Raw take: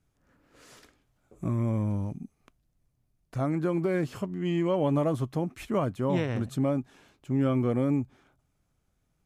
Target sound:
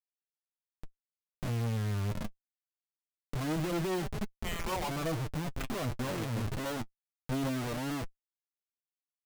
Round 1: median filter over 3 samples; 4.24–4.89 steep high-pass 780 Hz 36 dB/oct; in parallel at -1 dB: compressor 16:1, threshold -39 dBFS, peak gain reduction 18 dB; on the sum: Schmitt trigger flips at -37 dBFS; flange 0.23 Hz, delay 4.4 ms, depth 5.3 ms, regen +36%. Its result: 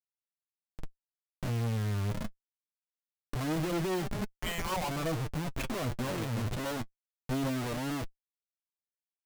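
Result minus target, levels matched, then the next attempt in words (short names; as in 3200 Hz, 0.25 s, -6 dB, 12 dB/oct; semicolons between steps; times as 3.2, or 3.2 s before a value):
compressor: peak gain reduction -10 dB
median filter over 3 samples; 4.24–4.89 steep high-pass 780 Hz 36 dB/oct; in parallel at -1 dB: compressor 16:1, threshold -49.5 dBFS, peak gain reduction 28 dB; on the sum: Schmitt trigger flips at -37 dBFS; flange 0.23 Hz, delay 4.4 ms, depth 5.3 ms, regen +36%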